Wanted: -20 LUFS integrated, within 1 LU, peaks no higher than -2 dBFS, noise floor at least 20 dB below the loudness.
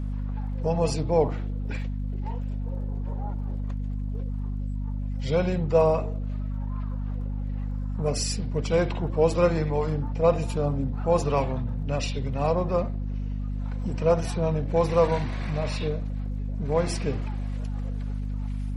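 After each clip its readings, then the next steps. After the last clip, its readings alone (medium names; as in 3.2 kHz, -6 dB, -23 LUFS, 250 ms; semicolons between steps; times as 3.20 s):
tick rate 23 per s; hum 50 Hz; highest harmonic 250 Hz; hum level -27 dBFS; loudness -27.5 LUFS; peak level -8.5 dBFS; loudness target -20.0 LUFS
-> de-click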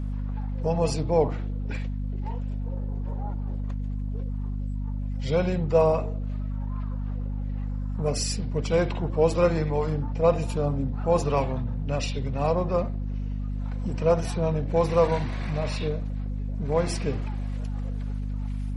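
tick rate 0 per s; hum 50 Hz; highest harmonic 250 Hz; hum level -27 dBFS
-> de-hum 50 Hz, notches 5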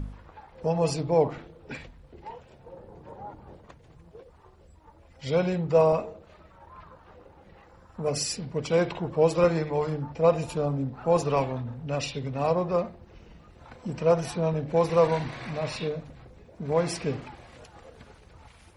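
hum not found; loudness -26.5 LUFS; peak level -9.0 dBFS; loudness target -20.0 LUFS
-> trim +6.5 dB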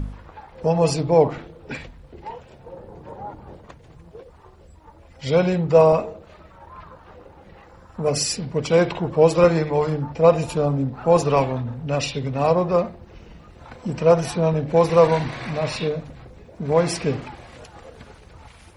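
loudness -20.0 LUFS; peak level -2.5 dBFS; noise floor -48 dBFS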